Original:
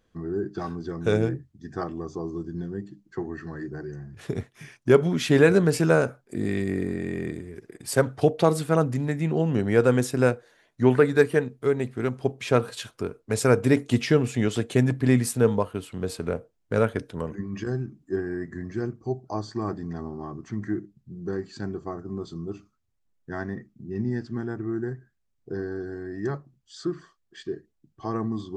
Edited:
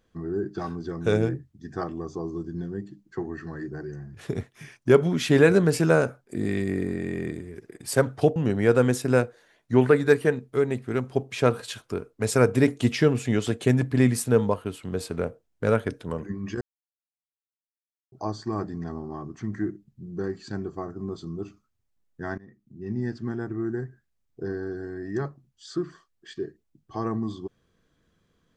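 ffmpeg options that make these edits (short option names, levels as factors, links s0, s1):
-filter_complex "[0:a]asplit=5[s0][s1][s2][s3][s4];[s0]atrim=end=8.362[s5];[s1]atrim=start=9.448:end=17.7,asetpts=PTS-STARTPTS,afade=t=out:st=8.248:d=0.004:c=hsin[s6];[s2]atrim=start=17.7:end=19.21,asetpts=PTS-STARTPTS,volume=0[s7];[s3]atrim=start=19.21:end=23.47,asetpts=PTS-STARTPTS,afade=t=in:d=0.004:c=hsin,afade=t=out:st=4.256:d=0.004:c=hsin:silence=0.0794328[s8];[s4]atrim=start=23.47,asetpts=PTS-STARTPTS,afade=t=in:d=0.74:silence=0.0794328[s9];[s6][s7][s8][s9]concat=n=4:v=0:a=1[s10];[s5][s10]acrossfade=d=0.004:c1=hsin:c2=hsin"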